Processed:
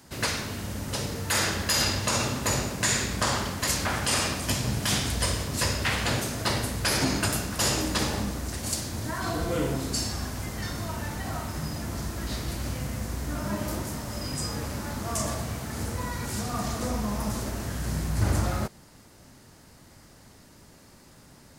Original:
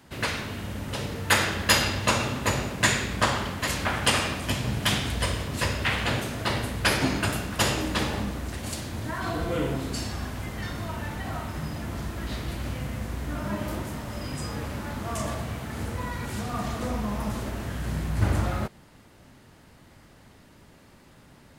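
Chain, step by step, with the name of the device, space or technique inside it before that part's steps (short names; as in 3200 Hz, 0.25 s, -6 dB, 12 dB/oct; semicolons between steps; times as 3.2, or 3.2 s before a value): over-bright horn tweeter (resonant high shelf 4100 Hz +6 dB, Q 1.5; limiter -14 dBFS, peak gain reduction 10 dB)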